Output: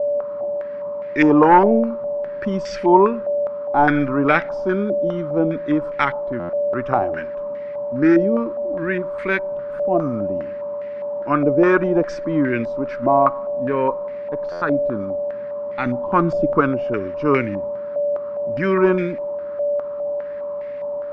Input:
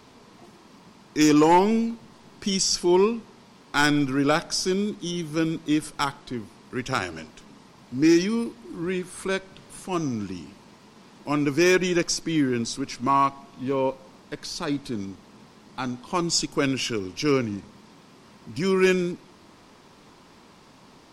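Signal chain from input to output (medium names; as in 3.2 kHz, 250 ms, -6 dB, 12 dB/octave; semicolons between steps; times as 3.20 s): 15.86–16.61 s: bass shelf 350 Hz +7 dB; whistle 580 Hz -30 dBFS; buffer glitch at 6.39/14.51 s, samples 512, times 8; step-sequenced low-pass 4.9 Hz 660–2000 Hz; trim +3 dB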